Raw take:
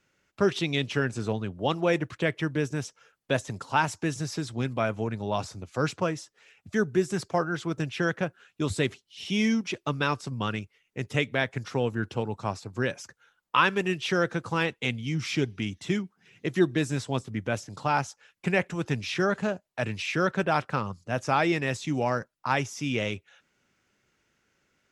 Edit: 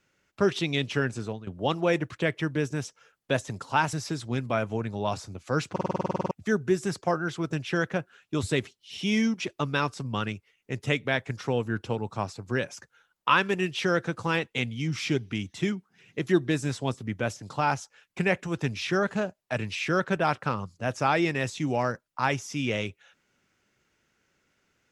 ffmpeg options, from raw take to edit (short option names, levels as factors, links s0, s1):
-filter_complex "[0:a]asplit=15[s0][s1][s2][s3][s4][s5][s6][s7][s8][s9][s10][s11][s12][s13][s14];[s0]atrim=end=1.47,asetpts=PTS-STARTPTS,afade=t=out:st=1.1:d=0.37:silence=0.199526[s15];[s1]atrim=start=1.47:end=3.932,asetpts=PTS-STARTPTS,afade=t=in:d=0.004:c=hsin:silence=0.199526[s16];[s2]atrim=start=4.198:end=6.032[s17];[s3]atrim=start=5.978:end=6.032[s18];[s4]atrim=start=5.978:end=6.032[s19];[s5]atrim=start=5.978:end=6.032[s20];[s6]atrim=start=5.978:end=6.032[s21];[s7]atrim=start=5.978:end=6.032[s22];[s8]atrim=start=5.978:end=6.032[s23];[s9]atrim=start=5.978:end=6.032[s24];[s10]atrim=start=5.978:end=6.032[s25];[s11]atrim=start=5.978:end=6.032[s26];[s12]atrim=start=5.978:end=6.032[s27];[s13]atrim=start=5.978:end=6.032[s28];[s14]atrim=start=6.578[s29];[s15][s16]concat=n=2:v=0:a=1[s30];[s30][s17]acrossfade=d=0.004:c1=hsin:c2=hsin[s31];[s31][s18]acrossfade=d=0.004:c1=hsin:c2=hsin[s32];[s32][s19]acrossfade=d=0.004:c1=hsin:c2=hsin[s33];[s33][s20]acrossfade=d=0.004:c1=hsin:c2=hsin[s34];[s34][s21]acrossfade=d=0.004:c1=hsin:c2=hsin[s35];[s35][s22]acrossfade=d=0.004:c1=hsin:c2=hsin[s36];[s36][s23]acrossfade=d=0.004:c1=hsin:c2=hsin[s37];[s37][s24]acrossfade=d=0.004:c1=hsin:c2=hsin[s38];[s38][s25]acrossfade=d=0.004:c1=hsin:c2=hsin[s39];[s39][s26]acrossfade=d=0.004:c1=hsin:c2=hsin[s40];[s40][s27]acrossfade=d=0.004:c1=hsin:c2=hsin[s41];[s41][s28]acrossfade=d=0.004:c1=hsin:c2=hsin[s42];[s42][s29]acrossfade=d=0.004:c1=hsin:c2=hsin"